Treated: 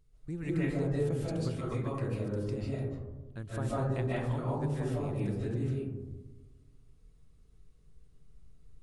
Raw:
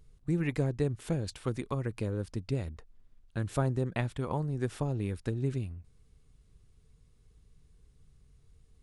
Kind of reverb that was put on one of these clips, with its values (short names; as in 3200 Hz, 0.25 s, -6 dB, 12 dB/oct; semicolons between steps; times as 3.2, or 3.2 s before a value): digital reverb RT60 1.2 s, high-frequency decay 0.25×, pre-delay 0.11 s, DRR -7.5 dB; gain -9 dB